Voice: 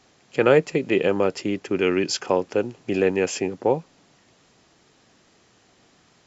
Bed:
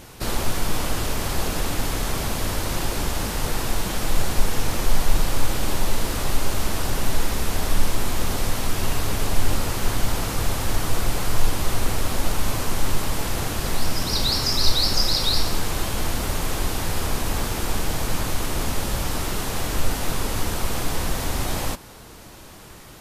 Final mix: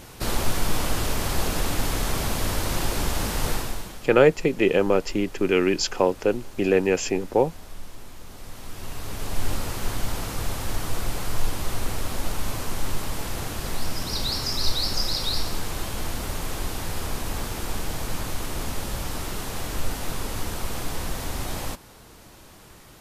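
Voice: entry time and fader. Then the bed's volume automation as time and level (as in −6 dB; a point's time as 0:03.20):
3.70 s, +0.5 dB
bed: 0:03.52 −0.5 dB
0:04.12 −19.5 dB
0:08.25 −19.5 dB
0:09.46 −5 dB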